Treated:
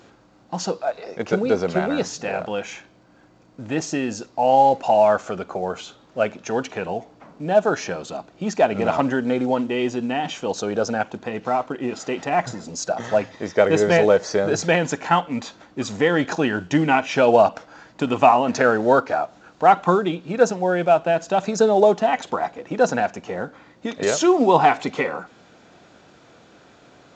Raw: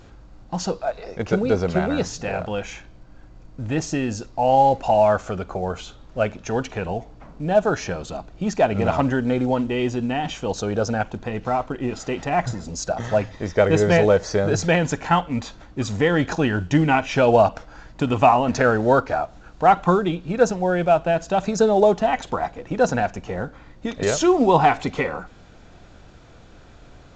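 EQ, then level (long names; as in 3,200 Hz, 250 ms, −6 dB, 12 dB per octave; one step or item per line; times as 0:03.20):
high-pass filter 200 Hz 12 dB per octave
+1.0 dB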